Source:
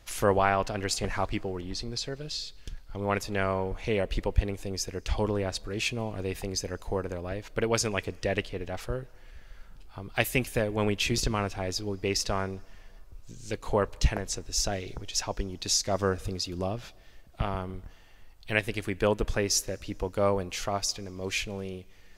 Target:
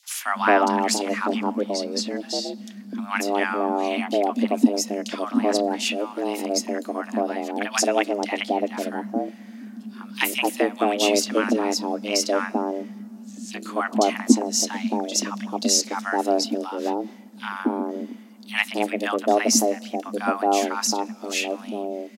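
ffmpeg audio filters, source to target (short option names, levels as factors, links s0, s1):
-filter_complex "[0:a]acrossover=split=760|3000[s0][s1][s2];[s1]adelay=30[s3];[s0]adelay=250[s4];[s4][s3][s2]amix=inputs=3:normalize=0,afreqshift=200,volume=2.24"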